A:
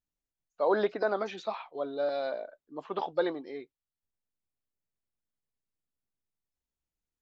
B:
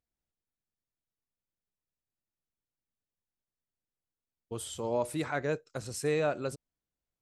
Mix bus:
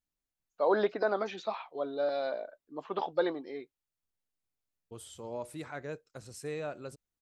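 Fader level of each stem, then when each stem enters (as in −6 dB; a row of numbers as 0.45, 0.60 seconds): −0.5, −8.5 decibels; 0.00, 0.40 seconds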